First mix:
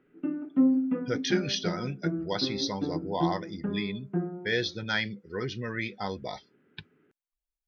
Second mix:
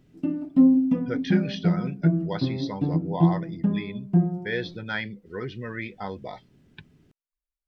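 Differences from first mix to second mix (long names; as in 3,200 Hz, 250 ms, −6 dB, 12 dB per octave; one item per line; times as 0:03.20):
speech: add low-pass filter 2,700 Hz 12 dB per octave
background: remove loudspeaker in its box 340–2,400 Hz, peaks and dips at 420 Hz +4 dB, 660 Hz −8 dB, 970 Hz −5 dB, 1,400 Hz +8 dB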